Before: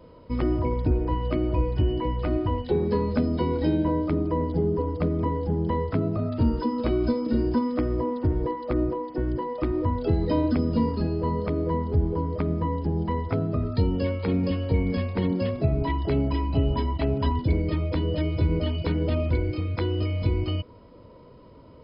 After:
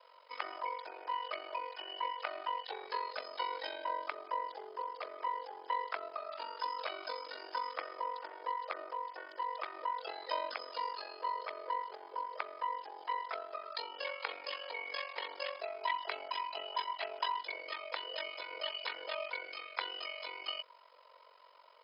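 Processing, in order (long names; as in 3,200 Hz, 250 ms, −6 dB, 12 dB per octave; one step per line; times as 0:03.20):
ring modulation 23 Hz
Bessel high-pass filter 1,100 Hz, order 6
level +4 dB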